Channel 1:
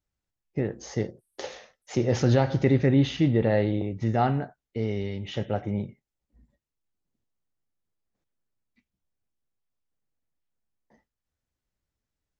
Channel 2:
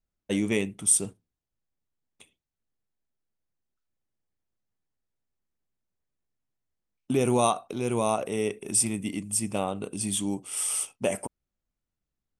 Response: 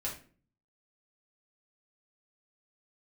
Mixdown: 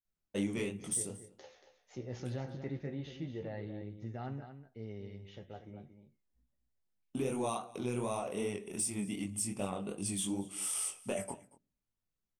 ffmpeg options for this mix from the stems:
-filter_complex "[0:a]flanger=delay=7.2:depth=9.2:regen=41:speed=0.23:shape=triangular,volume=-15.5dB,asplit=2[link_01][link_02];[link_02]volume=-10dB[link_03];[1:a]acompressor=threshold=-25dB:ratio=6,asoftclip=type=tanh:threshold=-16.5dB,flanger=delay=20:depth=5.4:speed=2.6,adelay=50,volume=-3.5dB,asplit=3[link_04][link_05][link_06];[link_05]volume=-12.5dB[link_07];[link_06]volume=-20.5dB[link_08];[2:a]atrim=start_sample=2205[link_09];[link_07][link_09]afir=irnorm=-1:irlink=0[link_10];[link_03][link_08]amix=inputs=2:normalize=0,aecho=0:1:231:1[link_11];[link_01][link_04][link_10][link_11]amix=inputs=4:normalize=0"

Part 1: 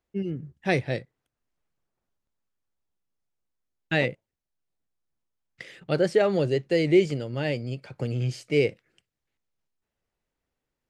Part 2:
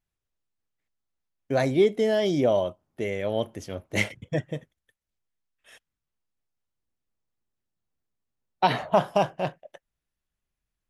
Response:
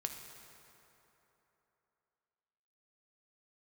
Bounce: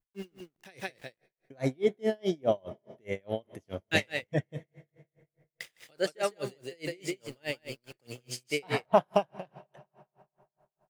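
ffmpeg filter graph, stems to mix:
-filter_complex "[0:a]aemphasis=mode=production:type=riaa,aeval=exprs='val(0)*gte(abs(val(0)),0.00708)':channel_layout=same,volume=-2dB,asplit=3[link_01][link_02][link_03];[link_02]volume=-24dB[link_04];[link_03]volume=-4.5dB[link_05];[1:a]volume=-2dB,asplit=2[link_06][link_07];[link_07]volume=-11dB[link_08];[2:a]atrim=start_sample=2205[link_09];[link_04][link_08]amix=inputs=2:normalize=0[link_10];[link_10][link_09]afir=irnorm=-1:irlink=0[link_11];[link_05]aecho=0:1:159:1[link_12];[link_01][link_06][link_11][link_12]amix=inputs=4:normalize=0,adynamicequalizer=threshold=0.00447:dfrequency=5700:dqfactor=0.9:tfrequency=5700:tqfactor=0.9:attack=5:release=100:ratio=0.375:range=2:mode=cutabove:tftype=bell,aeval=exprs='val(0)*pow(10,-36*(0.5-0.5*cos(2*PI*4.8*n/s))/20)':channel_layout=same"

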